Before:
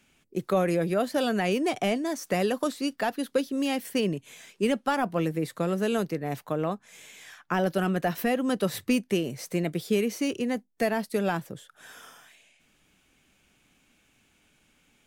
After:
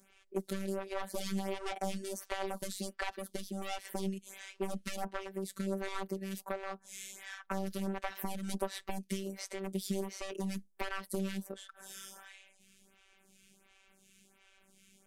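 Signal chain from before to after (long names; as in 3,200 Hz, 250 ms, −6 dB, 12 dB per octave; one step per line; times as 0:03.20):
wavefolder on the positive side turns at −25 dBFS
low-pass filter 11,000 Hz 12 dB per octave
high-shelf EQ 7,400 Hz +9.5 dB
downward compressor, threshold −33 dBFS, peak gain reduction 12 dB
phases set to zero 193 Hz
phaser with staggered stages 1.4 Hz
level +4 dB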